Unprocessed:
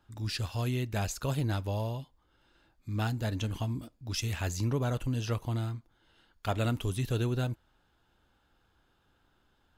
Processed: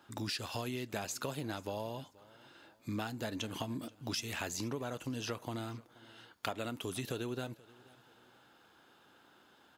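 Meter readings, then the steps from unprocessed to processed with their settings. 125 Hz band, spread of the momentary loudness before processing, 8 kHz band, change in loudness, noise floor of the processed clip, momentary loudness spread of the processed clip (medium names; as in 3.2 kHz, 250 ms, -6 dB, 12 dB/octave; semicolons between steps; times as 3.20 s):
-13.5 dB, 8 LU, -2.0 dB, -6.5 dB, -65 dBFS, 17 LU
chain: high-pass 230 Hz 12 dB/octave; compression 10:1, threshold -44 dBFS, peak gain reduction 17.5 dB; on a send: feedback delay 480 ms, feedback 36%, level -22.5 dB; on the sum: trim +9 dB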